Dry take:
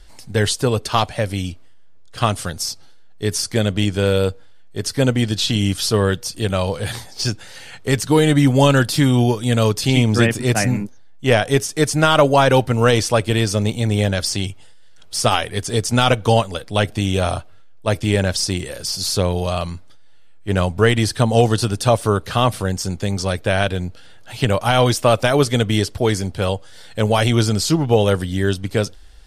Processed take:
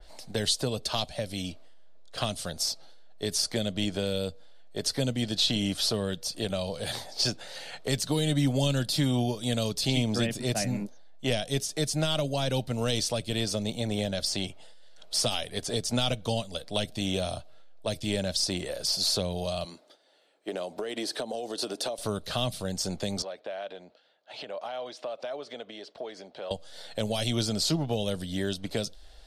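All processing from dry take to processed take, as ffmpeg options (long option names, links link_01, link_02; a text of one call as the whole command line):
ffmpeg -i in.wav -filter_complex "[0:a]asettb=1/sr,asplit=3[link_01][link_02][link_03];[link_01]atrim=end=19.644[link_04];[link_02]atrim=start=19.64:end=21.98,asetpts=PTS-STARTPTS,afade=type=in:duration=0.004:curve=qsin,afade=type=out:start_time=2.336:duration=0.004:curve=qsin,highpass=frequency=330:width_type=q:width=1.8,acompressor=threshold=-23dB:ratio=5:attack=3.2:release=140:knee=1:detection=peak[link_05];[link_03]atrim=start=21.976[link_06];[link_04][link_05]acrossfade=duration=0.004:curve1=hsin:curve2=qsin[link_07];[link_07][link_06]acrossfade=duration=0.004:curve1=qsin:curve2=hsin,asettb=1/sr,asplit=3[link_08][link_09][link_10];[link_08]atrim=end=23.224[link_11];[link_09]atrim=start=23.22:end=26.51,asetpts=PTS-STARTPTS,afade=type=in:duration=0.004:curve=qsin,afade=type=out:start_time=3.286:duration=0.004:curve=qsin,agate=range=-33dB:threshold=-31dB:ratio=3:release=100:detection=peak,acompressor=threshold=-31dB:ratio=6:attack=3.2:release=140:knee=1:detection=peak,highpass=300,lowpass=4300[link_12];[link_10]atrim=start=26.506[link_13];[link_11][link_12]acrossfade=duration=0.004:curve1=hsin:curve2=qsin[link_14];[link_14][link_13]acrossfade=duration=0.004:curve1=qsin:curve2=hsin,equalizer=frequency=100:width_type=o:width=0.67:gain=-11,equalizer=frequency=630:width_type=o:width=0.67:gain=12,equalizer=frequency=4000:width_type=o:width=0.67:gain=7,acrossover=split=230|3000[link_15][link_16][link_17];[link_16]acompressor=threshold=-25dB:ratio=10[link_18];[link_15][link_18][link_17]amix=inputs=3:normalize=0,adynamicequalizer=threshold=0.02:dfrequency=2800:dqfactor=0.7:tfrequency=2800:tqfactor=0.7:attack=5:release=100:ratio=0.375:range=2:mode=cutabove:tftype=highshelf,volume=-6.5dB" out.wav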